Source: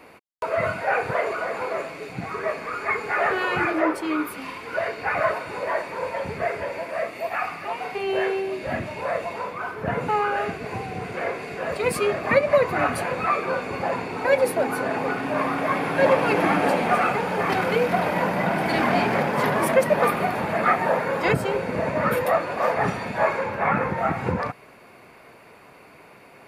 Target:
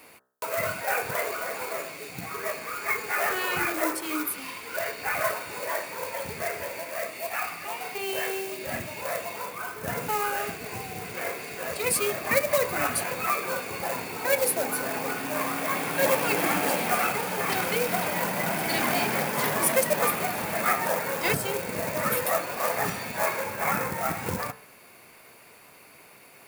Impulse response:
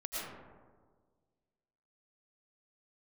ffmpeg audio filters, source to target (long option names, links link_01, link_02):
-af "acrusher=bits=5:mode=log:mix=0:aa=0.000001,bandreject=frequency=63.89:width_type=h:width=4,bandreject=frequency=127.78:width_type=h:width=4,bandreject=frequency=191.67:width_type=h:width=4,bandreject=frequency=255.56:width_type=h:width=4,bandreject=frequency=319.45:width_type=h:width=4,bandreject=frequency=383.34:width_type=h:width=4,bandreject=frequency=447.23:width_type=h:width=4,bandreject=frequency=511.12:width_type=h:width=4,bandreject=frequency=575.01:width_type=h:width=4,bandreject=frequency=638.9:width_type=h:width=4,bandreject=frequency=702.79:width_type=h:width=4,bandreject=frequency=766.68:width_type=h:width=4,bandreject=frequency=830.57:width_type=h:width=4,bandreject=frequency=894.46:width_type=h:width=4,bandreject=frequency=958.35:width_type=h:width=4,bandreject=frequency=1022.24:width_type=h:width=4,bandreject=frequency=1086.13:width_type=h:width=4,bandreject=frequency=1150.02:width_type=h:width=4,bandreject=frequency=1213.91:width_type=h:width=4,bandreject=frequency=1277.8:width_type=h:width=4,bandreject=frequency=1341.69:width_type=h:width=4,bandreject=frequency=1405.58:width_type=h:width=4,bandreject=frequency=1469.47:width_type=h:width=4,bandreject=frequency=1533.36:width_type=h:width=4,bandreject=frequency=1597.25:width_type=h:width=4,bandreject=frequency=1661.14:width_type=h:width=4,bandreject=frequency=1725.03:width_type=h:width=4,bandreject=frequency=1788.92:width_type=h:width=4,bandreject=frequency=1852.81:width_type=h:width=4,bandreject=frequency=1916.7:width_type=h:width=4,crystalizer=i=4:c=0,volume=-6.5dB"